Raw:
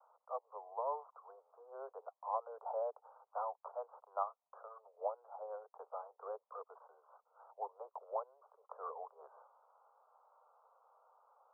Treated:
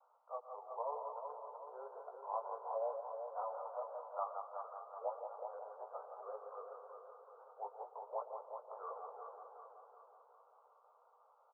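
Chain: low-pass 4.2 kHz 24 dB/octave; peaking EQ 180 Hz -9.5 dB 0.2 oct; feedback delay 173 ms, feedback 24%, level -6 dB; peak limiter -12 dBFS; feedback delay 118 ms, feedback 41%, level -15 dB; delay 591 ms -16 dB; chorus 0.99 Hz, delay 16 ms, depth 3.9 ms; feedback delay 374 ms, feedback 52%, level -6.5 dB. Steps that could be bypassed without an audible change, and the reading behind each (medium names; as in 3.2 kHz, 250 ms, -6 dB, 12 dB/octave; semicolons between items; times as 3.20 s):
low-pass 4.2 kHz: input has nothing above 1.5 kHz; peaking EQ 180 Hz: input has nothing below 360 Hz; peak limiter -12 dBFS: peak at its input -24.0 dBFS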